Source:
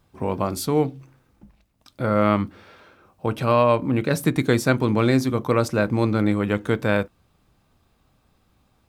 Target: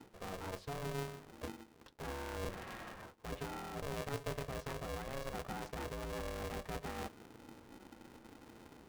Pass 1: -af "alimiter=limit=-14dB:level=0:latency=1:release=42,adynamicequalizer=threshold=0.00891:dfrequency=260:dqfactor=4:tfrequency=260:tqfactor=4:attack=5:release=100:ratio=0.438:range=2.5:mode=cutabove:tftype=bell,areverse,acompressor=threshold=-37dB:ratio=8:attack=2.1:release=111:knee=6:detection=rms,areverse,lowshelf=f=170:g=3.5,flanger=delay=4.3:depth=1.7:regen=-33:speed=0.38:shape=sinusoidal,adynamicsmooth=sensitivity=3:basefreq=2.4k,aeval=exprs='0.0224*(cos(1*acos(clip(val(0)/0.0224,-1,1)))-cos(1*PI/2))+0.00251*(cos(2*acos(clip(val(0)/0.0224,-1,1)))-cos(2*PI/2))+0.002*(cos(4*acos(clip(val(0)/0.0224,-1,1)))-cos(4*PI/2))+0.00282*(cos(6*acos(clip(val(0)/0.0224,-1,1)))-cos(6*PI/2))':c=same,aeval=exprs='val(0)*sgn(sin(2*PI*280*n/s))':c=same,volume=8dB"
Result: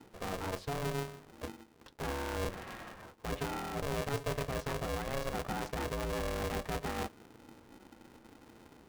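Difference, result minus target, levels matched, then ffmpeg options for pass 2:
compressor: peak gain reduction -5.5 dB
-af "alimiter=limit=-14dB:level=0:latency=1:release=42,adynamicequalizer=threshold=0.00891:dfrequency=260:dqfactor=4:tfrequency=260:tqfactor=4:attack=5:release=100:ratio=0.438:range=2.5:mode=cutabove:tftype=bell,areverse,acompressor=threshold=-43.5dB:ratio=8:attack=2.1:release=111:knee=6:detection=rms,areverse,lowshelf=f=170:g=3.5,flanger=delay=4.3:depth=1.7:regen=-33:speed=0.38:shape=sinusoidal,adynamicsmooth=sensitivity=3:basefreq=2.4k,aeval=exprs='0.0224*(cos(1*acos(clip(val(0)/0.0224,-1,1)))-cos(1*PI/2))+0.00251*(cos(2*acos(clip(val(0)/0.0224,-1,1)))-cos(2*PI/2))+0.002*(cos(4*acos(clip(val(0)/0.0224,-1,1)))-cos(4*PI/2))+0.00282*(cos(6*acos(clip(val(0)/0.0224,-1,1)))-cos(6*PI/2))':c=same,aeval=exprs='val(0)*sgn(sin(2*PI*280*n/s))':c=same,volume=8dB"

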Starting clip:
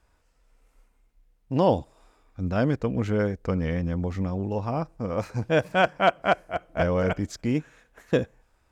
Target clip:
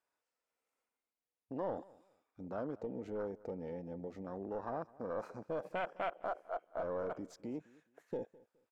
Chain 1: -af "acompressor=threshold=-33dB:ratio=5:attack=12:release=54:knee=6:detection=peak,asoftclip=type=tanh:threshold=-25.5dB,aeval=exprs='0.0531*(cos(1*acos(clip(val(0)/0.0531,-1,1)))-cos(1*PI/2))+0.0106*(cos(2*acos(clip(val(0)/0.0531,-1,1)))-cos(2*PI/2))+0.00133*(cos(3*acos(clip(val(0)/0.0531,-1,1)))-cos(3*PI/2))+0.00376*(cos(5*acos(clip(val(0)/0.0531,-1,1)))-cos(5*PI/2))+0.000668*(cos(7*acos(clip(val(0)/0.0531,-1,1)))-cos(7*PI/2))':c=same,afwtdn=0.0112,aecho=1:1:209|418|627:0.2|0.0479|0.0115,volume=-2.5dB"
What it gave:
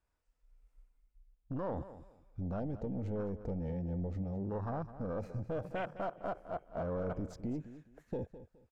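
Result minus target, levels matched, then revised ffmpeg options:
echo-to-direct +8.5 dB; 250 Hz band +3.0 dB
-af "acompressor=threshold=-33dB:ratio=5:attack=12:release=54:knee=6:detection=peak,highpass=350,asoftclip=type=tanh:threshold=-25.5dB,aeval=exprs='0.0531*(cos(1*acos(clip(val(0)/0.0531,-1,1)))-cos(1*PI/2))+0.0106*(cos(2*acos(clip(val(0)/0.0531,-1,1)))-cos(2*PI/2))+0.00133*(cos(3*acos(clip(val(0)/0.0531,-1,1)))-cos(3*PI/2))+0.00376*(cos(5*acos(clip(val(0)/0.0531,-1,1)))-cos(5*PI/2))+0.000668*(cos(7*acos(clip(val(0)/0.0531,-1,1)))-cos(7*PI/2))':c=same,afwtdn=0.0112,aecho=1:1:209|418:0.075|0.018,volume=-2.5dB"

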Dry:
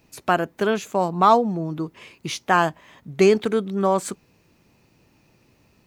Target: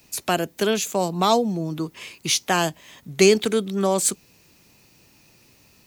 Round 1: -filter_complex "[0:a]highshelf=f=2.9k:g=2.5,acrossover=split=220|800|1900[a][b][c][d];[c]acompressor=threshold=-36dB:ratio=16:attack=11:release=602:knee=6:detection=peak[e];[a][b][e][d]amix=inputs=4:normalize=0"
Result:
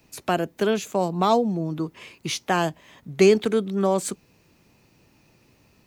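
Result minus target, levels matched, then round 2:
8000 Hz band -8.5 dB
-filter_complex "[0:a]highshelf=f=2.9k:g=14,acrossover=split=220|800|1900[a][b][c][d];[c]acompressor=threshold=-36dB:ratio=16:attack=11:release=602:knee=6:detection=peak[e];[a][b][e][d]amix=inputs=4:normalize=0"

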